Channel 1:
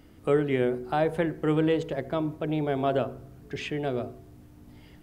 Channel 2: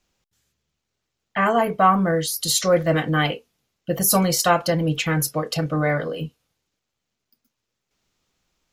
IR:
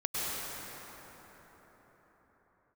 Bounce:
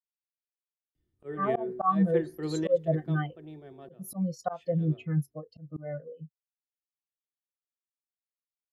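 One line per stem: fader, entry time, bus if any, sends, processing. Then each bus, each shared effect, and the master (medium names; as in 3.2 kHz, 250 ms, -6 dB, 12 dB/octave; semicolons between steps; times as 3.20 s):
3.07 s -1.5 dB -> 3.87 s -12 dB, 0.95 s, no send, peaking EQ 150 Hz +4.5 dB 0.77 oct; small resonant body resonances 360/1800/3500 Hz, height 13 dB, ringing for 60 ms; three bands expanded up and down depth 100%; auto duck -12 dB, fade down 0.45 s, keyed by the second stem
+1.5 dB, 0.00 s, no send, spectral contrast expander 2.5:1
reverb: none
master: slow attack 253 ms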